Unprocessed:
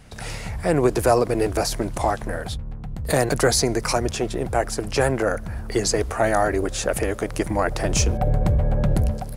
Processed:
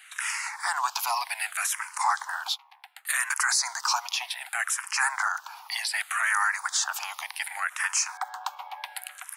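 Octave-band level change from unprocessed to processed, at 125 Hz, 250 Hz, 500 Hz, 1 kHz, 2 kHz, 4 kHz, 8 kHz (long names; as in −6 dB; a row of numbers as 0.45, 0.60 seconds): below −40 dB, below −40 dB, −30.0 dB, −2.5 dB, +3.0 dB, −0.5 dB, 0.0 dB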